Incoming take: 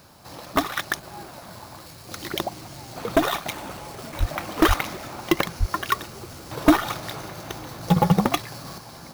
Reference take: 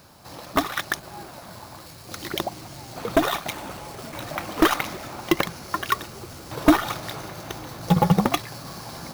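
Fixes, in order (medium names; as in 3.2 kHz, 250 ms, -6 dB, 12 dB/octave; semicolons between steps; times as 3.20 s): de-plosive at 4.19/4.67/5.59 s; gain correction +5 dB, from 8.78 s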